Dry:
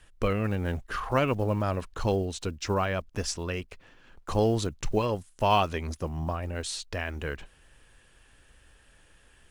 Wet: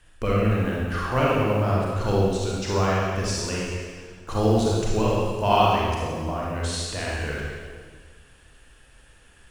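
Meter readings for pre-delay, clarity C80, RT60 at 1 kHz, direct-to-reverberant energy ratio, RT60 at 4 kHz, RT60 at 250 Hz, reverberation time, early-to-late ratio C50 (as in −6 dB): 33 ms, 0.0 dB, 1.6 s, −5.0 dB, 1.6 s, 1.8 s, 1.7 s, −2.5 dB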